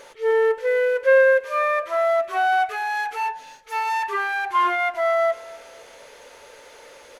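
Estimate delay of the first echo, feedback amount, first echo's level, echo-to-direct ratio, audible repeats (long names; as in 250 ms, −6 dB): 251 ms, 38%, −21.0 dB, −20.5 dB, 2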